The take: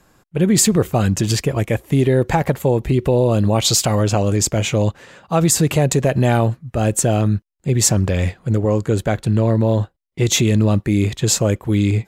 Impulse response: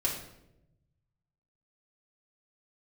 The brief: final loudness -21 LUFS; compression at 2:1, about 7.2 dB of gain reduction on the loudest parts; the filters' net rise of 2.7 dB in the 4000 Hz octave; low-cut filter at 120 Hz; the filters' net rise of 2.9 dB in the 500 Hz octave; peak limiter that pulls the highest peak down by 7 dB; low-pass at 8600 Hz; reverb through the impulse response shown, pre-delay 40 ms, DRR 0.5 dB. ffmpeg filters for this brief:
-filter_complex "[0:a]highpass=120,lowpass=8.6k,equalizer=f=500:t=o:g=3.5,equalizer=f=4k:t=o:g=3.5,acompressor=threshold=-23dB:ratio=2,alimiter=limit=-13.5dB:level=0:latency=1,asplit=2[a][b];[1:a]atrim=start_sample=2205,adelay=40[c];[b][c]afir=irnorm=-1:irlink=0,volume=-6.5dB[d];[a][d]amix=inputs=2:normalize=0,volume=0.5dB"

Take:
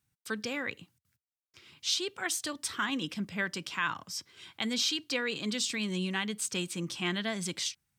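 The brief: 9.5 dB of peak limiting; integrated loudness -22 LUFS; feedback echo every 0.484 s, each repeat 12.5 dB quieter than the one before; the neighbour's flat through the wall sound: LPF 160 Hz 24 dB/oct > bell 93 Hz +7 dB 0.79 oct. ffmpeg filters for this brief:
-af "alimiter=level_in=3.5dB:limit=-24dB:level=0:latency=1,volume=-3.5dB,lowpass=f=160:w=0.5412,lowpass=f=160:w=1.3066,equalizer=f=93:t=o:w=0.79:g=7,aecho=1:1:484|968|1452:0.237|0.0569|0.0137,volume=27.5dB"

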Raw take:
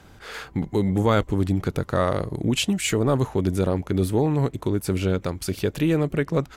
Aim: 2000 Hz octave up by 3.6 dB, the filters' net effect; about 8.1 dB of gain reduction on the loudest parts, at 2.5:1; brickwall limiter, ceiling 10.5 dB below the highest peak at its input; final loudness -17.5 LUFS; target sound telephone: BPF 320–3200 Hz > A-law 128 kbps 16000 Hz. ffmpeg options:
-af "equalizer=f=2k:t=o:g=5.5,acompressor=threshold=-29dB:ratio=2.5,alimiter=level_in=2.5dB:limit=-24dB:level=0:latency=1,volume=-2.5dB,highpass=320,lowpass=3.2k,volume=22.5dB" -ar 16000 -c:a pcm_alaw

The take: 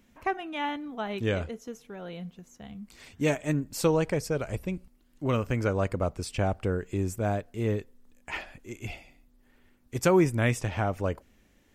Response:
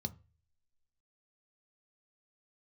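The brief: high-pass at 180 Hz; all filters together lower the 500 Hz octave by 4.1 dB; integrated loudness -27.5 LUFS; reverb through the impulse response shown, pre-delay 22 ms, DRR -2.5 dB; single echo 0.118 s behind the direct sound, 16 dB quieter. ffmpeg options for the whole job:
-filter_complex "[0:a]highpass=180,equalizer=f=500:t=o:g=-5,aecho=1:1:118:0.158,asplit=2[a][b];[1:a]atrim=start_sample=2205,adelay=22[c];[b][c]afir=irnorm=-1:irlink=0,volume=4dB[d];[a][d]amix=inputs=2:normalize=0,volume=-4dB"

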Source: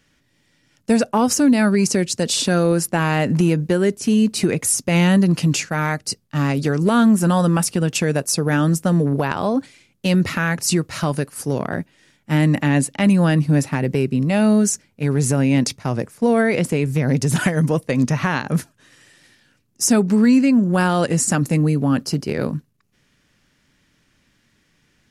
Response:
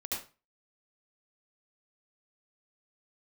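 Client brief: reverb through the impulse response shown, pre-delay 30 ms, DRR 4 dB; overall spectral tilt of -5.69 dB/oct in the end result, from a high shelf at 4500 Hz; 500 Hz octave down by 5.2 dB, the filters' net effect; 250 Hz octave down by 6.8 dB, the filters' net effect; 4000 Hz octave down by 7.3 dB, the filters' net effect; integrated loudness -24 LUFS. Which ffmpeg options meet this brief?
-filter_complex "[0:a]equalizer=f=250:t=o:g=-9,equalizer=f=500:t=o:g=-3.5,equalizer=f=4k:t=o:g=-5.5,highshelf=f=4.5k:g=-7.5,asplit=2[a][b];[1:a]atrim=start_sample=2205,adelay=30[c];[b][c]afir=irnorm=-1:irlink=0,volume=-6.5dB[d];[a][d]amix=inputs=2:normalize=0,volume=-2dB"

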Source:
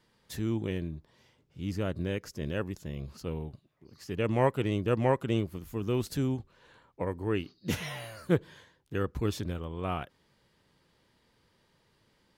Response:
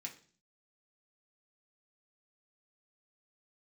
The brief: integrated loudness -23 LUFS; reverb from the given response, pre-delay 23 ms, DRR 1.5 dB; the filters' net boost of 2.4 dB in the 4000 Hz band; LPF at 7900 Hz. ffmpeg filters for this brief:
-filter_complex "[0:a]lowpass=7.9k,equalizer=f=4k:t=o:g=3.5,asplit=2[a][b];[1:a]atrim=start_sample=2205,adelay=23[c];[b][c]afir=irnorm=-1:irlink=0,volume=1.5dB[d];[a][d]amix=inputs=2:normalize=0,volume=8dB"

